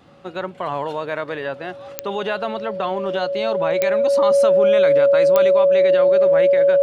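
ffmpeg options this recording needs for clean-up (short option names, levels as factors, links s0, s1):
-af "adeclick=t=4,bandreject=f=560:w=30"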